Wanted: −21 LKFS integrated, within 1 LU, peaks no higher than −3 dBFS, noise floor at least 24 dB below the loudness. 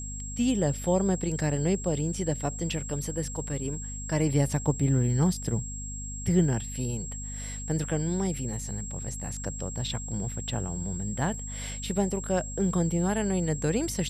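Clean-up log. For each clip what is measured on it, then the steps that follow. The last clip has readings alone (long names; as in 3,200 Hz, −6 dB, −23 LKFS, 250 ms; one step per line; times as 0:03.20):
mains hum 50 Hz; hum harmonics up to 250 Hz; level of the hum −36 dBFS; interfering tone 7,600 Hz; level of the tone −38 dBFS; integrated loudness −29.0 LKFS; sample peak −12.5 dBFS; target loudness −21.0 LKFS
→ hum removal 50 Hz, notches 5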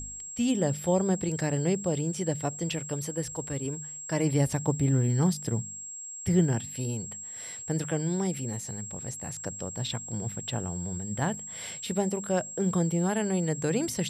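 mains hum none found; interfering tone 7,600 Hz; level of the tone −38 dBFS
→ notch filter 7,600 Hz, Q 30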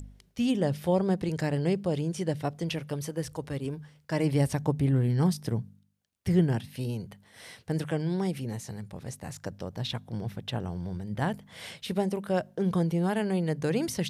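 interfering tone none found; integrated loudness −30.0 LKFS; sample peak −13.5 dBFS; target loudness −21.0 LKFS
→ level +9 dB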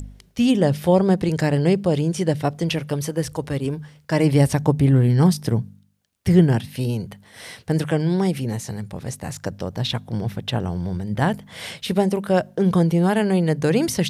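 integrated loudness −21.0 LKFS; sample peak −4.5 dBFS; background noise floor −54 dBFS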